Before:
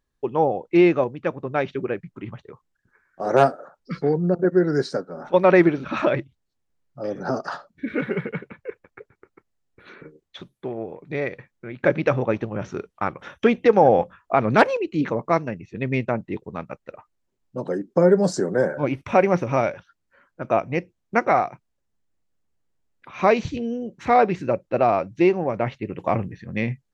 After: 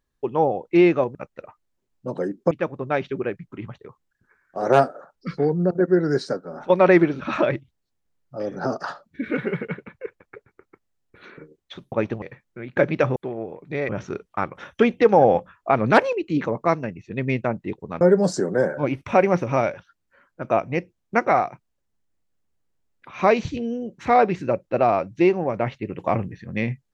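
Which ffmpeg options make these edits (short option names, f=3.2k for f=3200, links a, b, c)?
-filter_complex "[0:a]asplit=8[a][b][c][d][e][f][g][h];[a]atrim=end=1.152[i];[b]atrim=start=16.648:end=18.012[j];[c]atrim=start=1.148:end=10.562[k];[d]atrim=start=12.228:end=12.532[l];[e]atrim=start=11.288:end=12.232[m];[f]atrim=start=10.558:end=11.292[n];[g]atrim=start=12.528:end=16.652[o];[h]atrim=start=18.008[p];[i][j]acrossfade=d=0.004:c1=hsin:c2=hsin[q];[q][k]acrossfade=d=0.004:c1=hsin:c2=hsin[r];[r][l]acrossfade=d=0.004:c1=hsin:c2=hsin[s];[s][m]acrossfade=d=0.004:c1=hsin:c2=hsin[t];[t][n]acrossfade=d=0.004:c1=hsin:c2=hsin[u];[u][o]acrossfade=d=0.004:c1=hsin:c2=hsin[v];[v][p]acrossfade=d=0.004:c1=hsin:c2=hsin"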